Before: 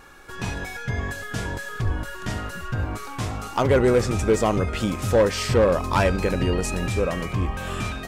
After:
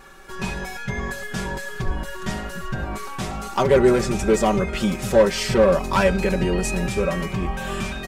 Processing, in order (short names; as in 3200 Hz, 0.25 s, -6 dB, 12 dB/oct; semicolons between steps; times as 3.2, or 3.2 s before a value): comb 5.2 ms, depth 78%